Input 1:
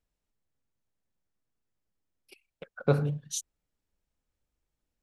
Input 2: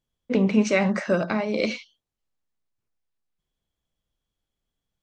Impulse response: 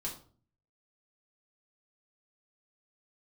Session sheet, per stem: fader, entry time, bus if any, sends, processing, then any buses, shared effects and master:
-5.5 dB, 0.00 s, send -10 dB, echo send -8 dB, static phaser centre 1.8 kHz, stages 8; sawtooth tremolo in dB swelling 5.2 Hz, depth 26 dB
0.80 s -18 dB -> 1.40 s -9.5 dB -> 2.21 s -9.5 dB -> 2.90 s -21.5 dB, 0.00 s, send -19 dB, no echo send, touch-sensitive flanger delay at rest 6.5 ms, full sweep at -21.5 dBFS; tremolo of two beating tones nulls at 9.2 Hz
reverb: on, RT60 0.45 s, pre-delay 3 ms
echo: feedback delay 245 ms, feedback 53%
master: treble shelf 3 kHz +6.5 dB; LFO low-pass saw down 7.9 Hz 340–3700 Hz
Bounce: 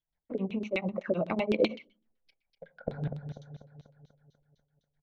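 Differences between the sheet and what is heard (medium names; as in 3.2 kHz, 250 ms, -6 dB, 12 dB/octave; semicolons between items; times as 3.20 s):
stem 1 -5.5 dB -> +3.5 dB; stem 2 -18.0 dB -> -10.5 dB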